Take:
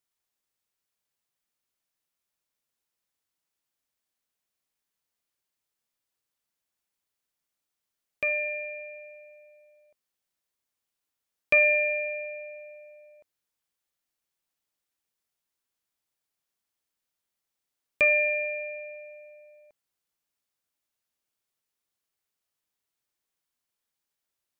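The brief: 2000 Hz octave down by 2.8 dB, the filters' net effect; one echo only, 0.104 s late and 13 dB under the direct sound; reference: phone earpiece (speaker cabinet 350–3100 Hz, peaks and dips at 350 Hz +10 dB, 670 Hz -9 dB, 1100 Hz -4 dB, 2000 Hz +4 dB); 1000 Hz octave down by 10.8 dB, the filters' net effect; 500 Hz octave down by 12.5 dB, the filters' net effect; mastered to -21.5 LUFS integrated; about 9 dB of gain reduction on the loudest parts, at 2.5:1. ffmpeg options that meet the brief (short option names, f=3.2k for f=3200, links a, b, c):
-af "equalizer=f=500:t=o:g=-6.5,equalizer=f=1k:t=o:g=-7.5,equalizer=f=2k:t=o:g=-3,acompressor=threshold=-35dB:ratio=2.5,highpass=350,equalizer=f=350:t=q:w=4:g=10,equalizer=f=670:t=q:w=4:g=-9,equalizer=f=1.1k:t=q:w=4:g=-4,equalizer=f=2k:t=q:w=4:g=4,lowpass=f=3.1k:w=0.5412,lowpass=f=3.1k:w=1.3066,aecho=1:1:104:0.224,volume=13.5dB"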